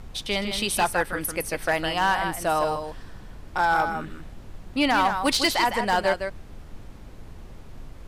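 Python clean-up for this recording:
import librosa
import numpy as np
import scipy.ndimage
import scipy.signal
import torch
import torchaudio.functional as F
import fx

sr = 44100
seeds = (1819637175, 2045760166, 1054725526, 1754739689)

y = fx.fix_declip(x, sr, threshold_db=-14.0)
y = fx.noise_reduce(y, sr, print_start_s=6.82, print_end_s=7.32, reduce_db=29.0)
y = fx.fix_echo_inverse(y, sr, delay_ms=157, level_db=-7.5)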